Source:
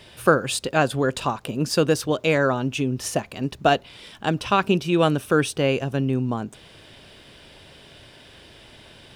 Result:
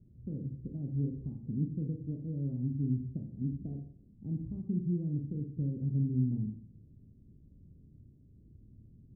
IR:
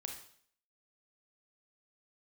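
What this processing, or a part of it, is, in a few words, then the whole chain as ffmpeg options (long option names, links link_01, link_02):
club heard from the street: -filter_complex "[0:a]alimiter=limit=-14dB:level=0:latency=1:release=172,lowpass=frequency=230:width=0.5412,lowpass=frequency=230:width=1.3066[link_01];[1:a]atrim=start_sample=2205[link_02];[link_01][link_02]afir=irnorm=-1:irlink=0"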